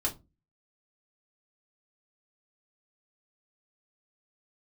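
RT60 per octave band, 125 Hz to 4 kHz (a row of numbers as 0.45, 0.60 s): 0.45, 0.40, 0.30, 0.20, 0.15, 0.15 s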